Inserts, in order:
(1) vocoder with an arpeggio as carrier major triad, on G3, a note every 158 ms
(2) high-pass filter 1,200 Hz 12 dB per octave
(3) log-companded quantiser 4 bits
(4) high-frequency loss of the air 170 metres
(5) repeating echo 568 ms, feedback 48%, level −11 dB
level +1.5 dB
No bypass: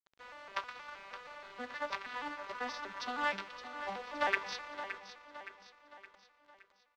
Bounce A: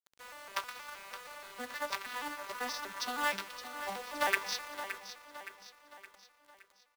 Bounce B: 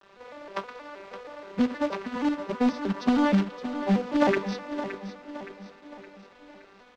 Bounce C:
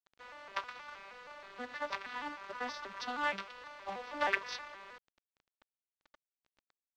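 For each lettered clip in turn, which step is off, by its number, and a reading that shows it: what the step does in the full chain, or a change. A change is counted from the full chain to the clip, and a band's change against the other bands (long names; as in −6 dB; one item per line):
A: 4, 8 kHz band +11.5 dB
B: 2, 250 Hz band +21.5 dB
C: 5, echo-to-direct ratio −10.0 dB to none audible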